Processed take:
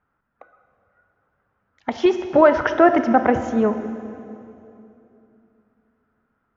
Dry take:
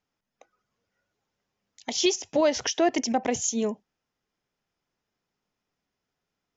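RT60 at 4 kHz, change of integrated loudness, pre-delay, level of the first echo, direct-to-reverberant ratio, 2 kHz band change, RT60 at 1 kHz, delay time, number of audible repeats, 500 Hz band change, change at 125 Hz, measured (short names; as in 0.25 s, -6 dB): 2.3 s, +7.5 dB, 26 ms, none, 9.0 dB, +10.0 dB, 2.6 s, none, none, +9.0 dB, +11.0 dB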